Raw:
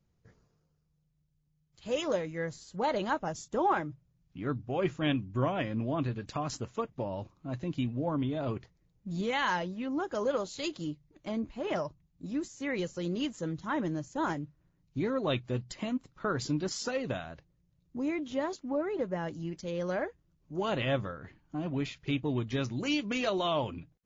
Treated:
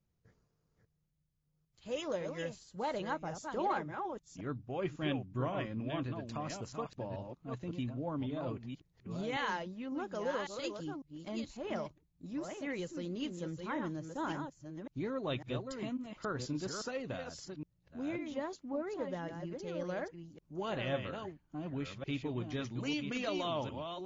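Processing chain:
delay that plays each chunk backwards 551 ms, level −6 dB
level −6.5 dB

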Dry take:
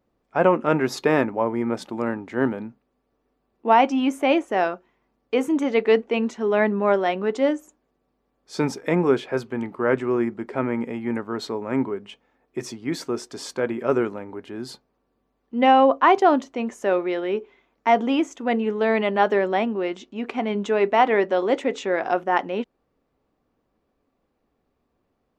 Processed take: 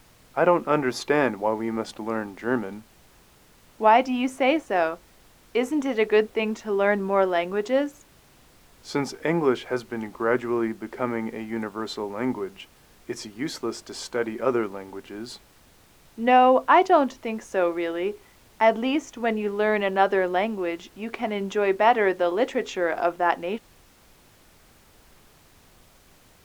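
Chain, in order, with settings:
low-shelf EQ 260 Hz −8 dB
background noise pink −55 dBFS
speed change −4%

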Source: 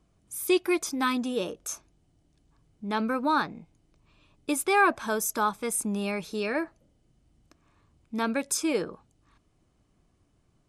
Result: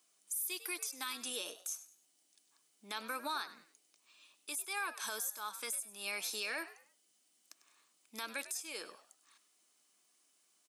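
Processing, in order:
high-pass filter 200 Hz 24 dB per octave
first difference
downward compressor 16 to 1, threshold −44 dBFS, peak gain reduction 21.5 dB
brickwall limiter −38.5 dBFS, peak gain reduction 9.5 dB
echo with shifted repeats 99 ms, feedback 32%, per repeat +91 Hz, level −14.5 dB
level +10.5 dB

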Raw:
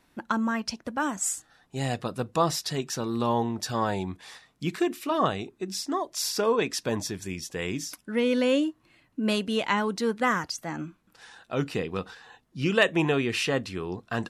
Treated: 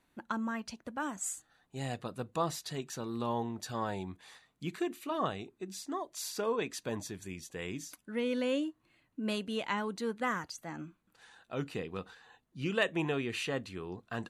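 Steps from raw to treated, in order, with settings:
notch filter 5,300 Hz, Q 6.4
level −8.5 dB

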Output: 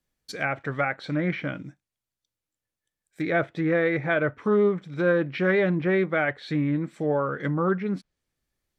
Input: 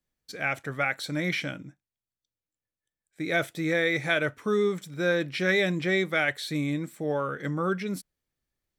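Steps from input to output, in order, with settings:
one scale factor per block 7 bits
treble cut that deepens with the level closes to 1,500 Hz, closed at −26 dBFS
highs frequency-modulated by the lows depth 0.11 ms
level +4 dB

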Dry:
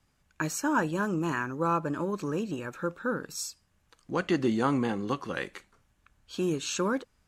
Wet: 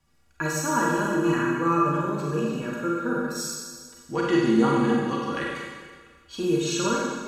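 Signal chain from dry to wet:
stiff-string resonator 70 Hz, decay 0.21 s, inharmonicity 0.03
four-comb reverb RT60 1.6 s, combs from 32 ms, DRR −3 dB
level +7 dB

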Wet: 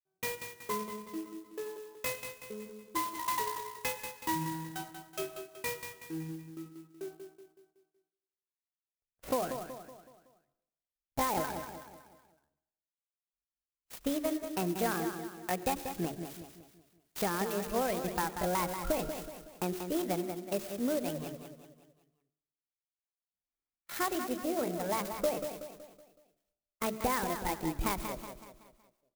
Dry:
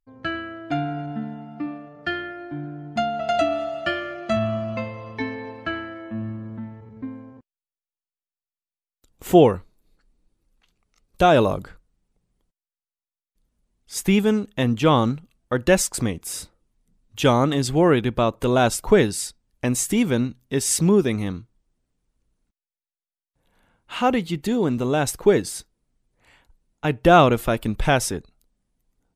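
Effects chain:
reverb reduction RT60 1.7 s
noise gate −39 dBFS, range −29 dB
high-shelf EQ 6,300 Hz +11.5 dB
mains-hum notches 50/100/150/200/250/300 Hz
downward compressor 16 to 1, threshold −19 dBFS, peak gain reduction 12 dB
pitch shifter +6.5 semitones
high-frequency loss of the air 84 metres
repeating echo 187 ms, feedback 45%, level −8 dB
on a send at −16.5 dB: convolution reverb RT60 0.80 s, pre-delay 60 ms
on the sum: converter with an unsteady clock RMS 0.064 ms
level −8 dB

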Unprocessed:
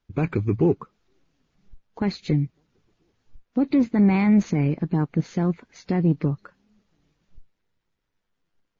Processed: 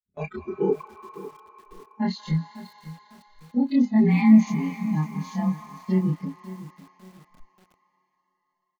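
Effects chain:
every overlapping window played backwards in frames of 65 ms
noise reduction from a noise print of the clip's start 22 dB
noise gate −45 dBFS, range −14 dB
comb filter 4.7 ms, depth 92%
on a send at −12 dB: high-pass with resonance 1,100 Hz, resonance Q 6.5 + convolution reverb RT60 4.9 s, pre-delay 160 ms
on the sum: feedback echo at a low word length 552 ms, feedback 35%, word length 7 bits, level −15 dB

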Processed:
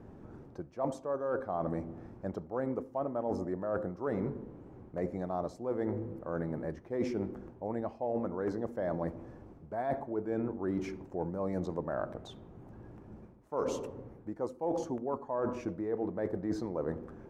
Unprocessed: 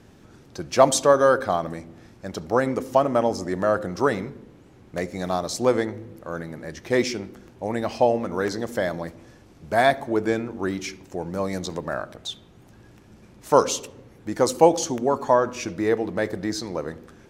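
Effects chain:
drawn EQ curve 110 Hz 0 dB, 390 Hz +4 dB, 960 Hz +3 dB, 3,700 Hz −17 dB
reversed playback
downward compressor 20 to 1, threshold −27 dBFS, peak gain reduction 23 dB
reversed playback
low-shelf EQ 150 Hz +5 dB
level −3.5 dB

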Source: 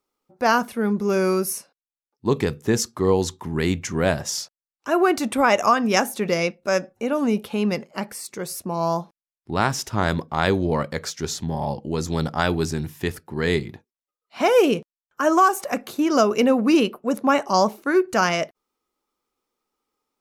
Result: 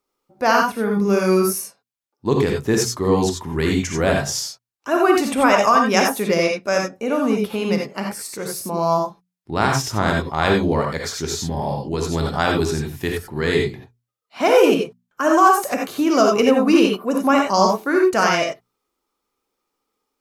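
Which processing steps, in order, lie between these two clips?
mains-hum notches 60/120/180/240 Hz
reverb whose tail is shaped and stops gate 110 ms rising, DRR 1 dB
level +1 dB

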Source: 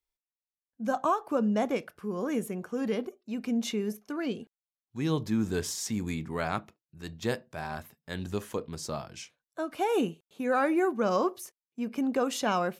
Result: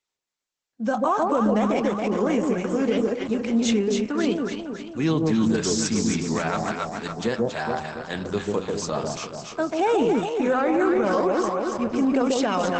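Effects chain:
Bessel high-pass filter 150 Hz, order 8
0:06.50–0:07.28: comb filter 4.4 ms, depth 44%
delay that swaps between a low-pass and a high-pass 139 ms, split 880 Hz, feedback 73%, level −2 dB
brickwall limiter −21 dBFS, peak gain reduction 8.5 dB
level +8.5 dB
Opus 12 kbit/s 48,000 Hz

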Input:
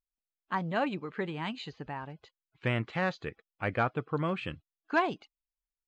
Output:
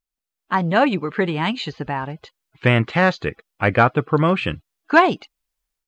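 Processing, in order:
automatic gain control gain up to 9 dB
level +5 dB

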